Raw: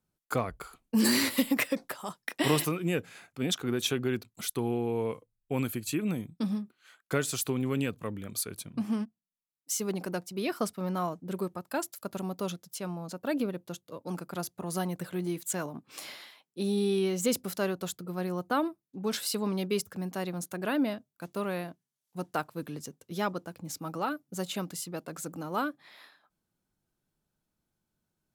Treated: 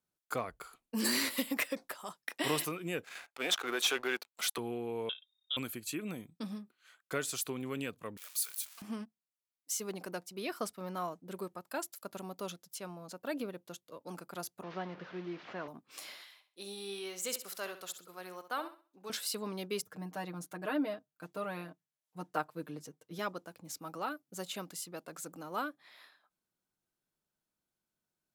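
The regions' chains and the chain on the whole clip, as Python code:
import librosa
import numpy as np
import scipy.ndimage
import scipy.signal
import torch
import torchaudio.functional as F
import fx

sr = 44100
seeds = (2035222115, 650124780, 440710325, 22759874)

y = fx.chain(x, sr, fx.highpass(hz=630.0, slope=12),
    fx.leveller(passes=3),
    fx.high_shelf(hz=5600.0, db=-7.5), at=(3.04, 4.58))
y = fx.chain(y, sr, fx.freq_invert(carrier_hz=3700),
    fx.band_squash(depth_pct=40), at=(5.09, 5.57))
y = fx.chain(y, sr, fx.crossing_spikes(level_db=-30.5),
    fx.bessel_highpass(hz=1200.0, order=4), at=(8.17, 8.82))
y = fx.chain(y, sr, fx.delta_mod(bps=32000, step_db=-37.5),
    fx.bandpass_edges(low_hz=120.0, high_hz=2400.0), at=(14.63, 15.68))
y = fx.chain(y, sr, fx.highpass(hz=880.0, slope=6),
    fx.room_flutter(wall_m=11.2, rt60_s=0.36), at=(16.23, 19.1))
y = fx.chain(y, sr, fx.high_shelf(hz=2400.0, db=-7.5),
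    fx.comb(ms=6.5, depth=0.83), at=(19.82, 23.19))
y = fx.low_shelf(y, sr, hz=240.0, db=-11.5)
y = fx.notch(y, sr, hz=840.0, q=25.0)
y = y * librosa.db_to_amplitude(-4.0)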